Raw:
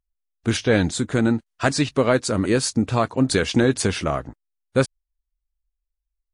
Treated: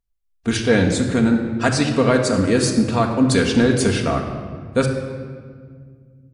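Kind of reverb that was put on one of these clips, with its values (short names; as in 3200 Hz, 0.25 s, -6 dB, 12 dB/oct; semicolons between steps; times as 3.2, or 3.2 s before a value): shoebox room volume 3000 m³, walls mixed, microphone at 1.7 m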